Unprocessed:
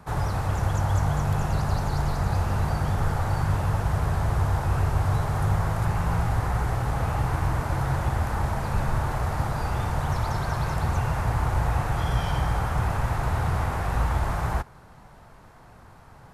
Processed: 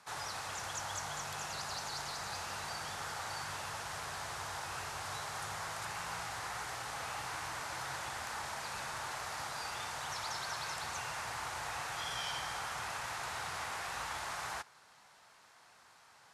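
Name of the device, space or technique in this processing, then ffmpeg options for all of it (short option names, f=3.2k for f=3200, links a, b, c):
piezo pickup straight into a mixer: -af "lowpass=5.9k,aderivative,volume=7dB"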